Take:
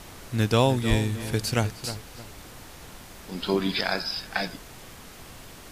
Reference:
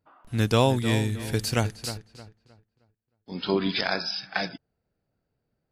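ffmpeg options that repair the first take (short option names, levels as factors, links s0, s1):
-filter_complex "[0:a]asplit=3[s0][s1][s2];[s0]afade=t=out:st=0.89:d=0.02[s3];[s1]highpass=f=140:w=0.5412,highpass=f=140:w=1.3066,afade=t=in:st=0.89:d=0.02,afade=t=out:st=1.01:d=0.02[s4];[s2]afade=t=in:st=1.01:d=0.02[s5];[s3][s4][s5]amix=inputs=3:normalize=0,afftdn=nr=30:nf=-45"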